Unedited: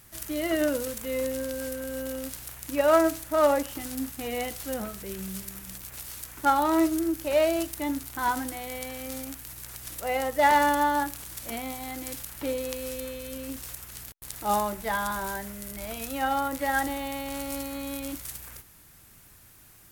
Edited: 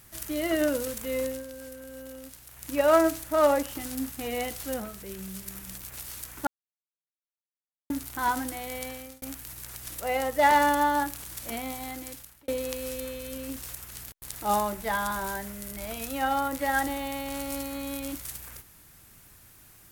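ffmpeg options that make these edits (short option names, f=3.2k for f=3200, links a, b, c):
-filter_complex "[0:a]asplit=9[a][b][c][d][e][f][g][h][i];[a]atrim=end=1.44,asetpts=PTS-STARTPTS,afade=t=out:st=1.13:d=0.31:c=qsin:silence=0.354813[j];[b]atrim=start=1.44:end=2.5,asetpts=PTS-STARTPTS,volume=-9dB[k];[c]atrim=start=2.5:end=4.802,asetpts=PTS-STARTPTS,afade=t=in:d=0.31:c=qsin:silence=0.354813[l];[d]atrim=start=4.798:end=5.462,asetpts=PTS-STARTPTS,volume=-3dB[m];[e]atrim=start=5.458:end=6.47,asetpts=PTS-STARTPTS,afade=t=out:st=1.008:d=0.004:c=hsin[n];[f]atrim=start=6.47:end=7.9,asetpts=PTS-STARTPTS,volume=0[o];[g]atrim=start=7.9:end=9.22,asetpts=PTS-STARTPTS,afade=t=in:d=0.004:c=hsin,afade=t=out:st=0.98:d=0.34[p];[h]atrim=start=9.22:end=12.48,asetpts=PTS-STARTPTS,afade=t=in:d=0.004:c=hsin,afade=t=out:st=2.62:d=0.64[q];[i]atrim=start=12.48,asetpts=PTS-STARTPTS,afade=t=in:d=0.004:c=hsin[r];[j][k][l]concat=n=3:v=0:a=1[s];[s][m]acrossfade=d=0.004:c1=hsin:c2=hsin[t];[n][o][p][q][r]concat=n=5:v=0:a=1[u];[t][u]acrossfade=d=0.004:c1=hsin:c2=hsin"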